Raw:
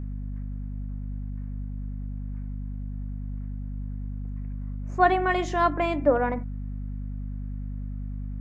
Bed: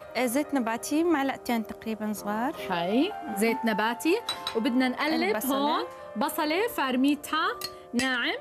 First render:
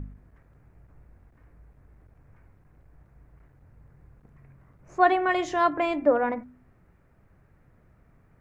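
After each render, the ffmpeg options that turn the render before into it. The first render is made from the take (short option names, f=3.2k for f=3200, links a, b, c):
-af "bandreject=f=50:t=h:w=4,bandreject=f=100:t=h:w=4,bandreject=f=150:t=h:w=4,bandreject=f=200:t=h:w=4,bandreject=f=250:t=h:w=4"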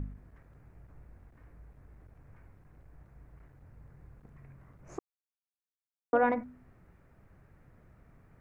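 -filter_complex "[0:a]asplit=3[a][b][c];[a]atrim=end=4.99,asetpts=PTS-STARTPTS,afade=t=out:st=4.986:d=0.004:c=hsin[d];[b]atrim=start=4.99:end=6.13,asetpts=PTS-STARTPTS,volume=0[e];[c]atrim=start=6.13,asetpts=PTS-STARTPTS,afade=t=in:d=0.004:c=hsin[f];[d][e][f]concat=n=3:v=0:a=1"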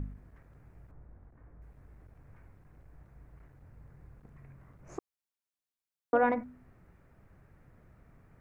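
-filter_complex "[0:a]asettb=1/sr,asplit=3[a][b][c];[a]atrim=end=0.914[d];[b]atrim=start=0.91:end=1.62,asetpts=PTS-STARTPTS,afade=t=in:d=0.004:c=qsin,afade=t=out:st=0.706:d=0.004:c=qsin,lowpass=1.5k[e];[c]atrim=start=1.616[f];[d][e]acrossfade=d=0.004:c1=hsin:c2=qsin[g];[g][f]acrossfade=d=0.004:c1=qsin:c2=hsin"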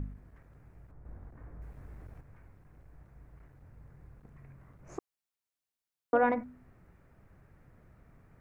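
-filter_complex "[0:a]asettb=1/sr,asplit=3[a][b][c];[a]atrim=end=1.054[d];[b]atrim=start=1.05:end=2.21,asetpts=PTS-STARTPTS,afade=t=in:d=0.004:c=qsin,afade=t=out:st=1.156:d=0.004:c=qsin,acontrast=74[e];[c]atrim=start=2.206[f];[d][e]acrossfade=d=0.004:c1=hsin:c2=qsin[g];[g][f]acrossfade=d=0.004:c1=qsin:c2=hsin"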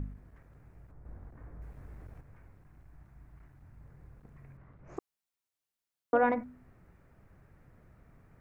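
-filter_complex "[0:a]asettb=1/sr,asplit=3[a][b][c];[a]atrim=end=2.664[d];[b]atrim=start=2.66:end=3.81,asetpts=PTS-STARTPTS,afade=t=in:d=0.004:c=qsin,afade=t=out:st=1.146:d=0.004:c=qsin,equalizer=f=490:t=o:w=0.43:g=-10[e];[c]atrim=start=3.806[f];[d][e]acrossfade=d=0.004:c1=hsin:c2=qsin[g];[g][f]acrossfade=d=0.004:c1=qsin:c2=hsin,asettb=1/sr,asplit=3[h][i][j];[h]atrim=end=4.574[k];[i]atrim=start=4.57:end=4.97,asetpts=PTS-STARTPTS,afade=t=in:d=0.004:c=qsin,afade=t=out:st=0.396:d=0.004:c=qsin,lowpass=3.3k[l];[j]atrim=start=4.966[m];[k][l]acrossfade=d=0.004:c1=hsin:c2=qsin[n];[n][m]acrossfade=d=0.004:c1=qsin:c2=hsin"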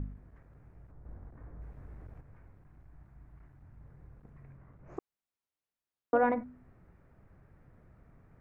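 -af "highshelf=f=3.2k:g=-11"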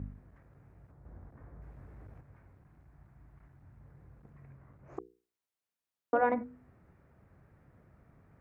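-af "highpass=54,bandreject=f=60:t=h:w=6,bandreject=f=120:t=h:w=6,bandreject=f=180:t=h:w=6,bandreject=f=240:t=h:w=6,bandreject=f=300:t=h:w=6,bandreject=f=360:t=h:w=6,bandreject=f=420:t=h:w=6,bandreject=f=480:t=h:w=6"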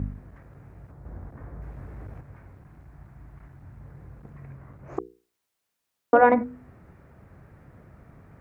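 -af "volume=11dB"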